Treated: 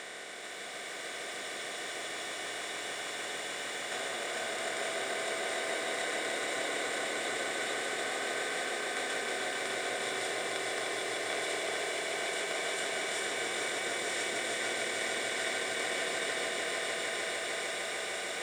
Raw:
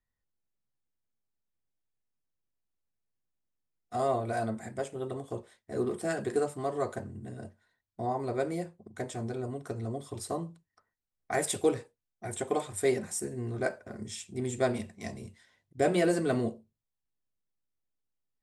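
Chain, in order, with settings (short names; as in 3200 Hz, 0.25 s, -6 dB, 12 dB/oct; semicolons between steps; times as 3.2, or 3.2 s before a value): per-bin compression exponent 0.2; compressor 4:1, threshold -24 dBFS, peak gain reduction 8.5 dB; band-pass 2900 Hz, Q 0.96; crackle 420/s -51 dBFS; swelling echo 0.151 s, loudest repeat 5, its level -6 dB; lo-fi delay 0.427 s, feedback 80%, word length 10-bit, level -7.5 dB; gain -2 dB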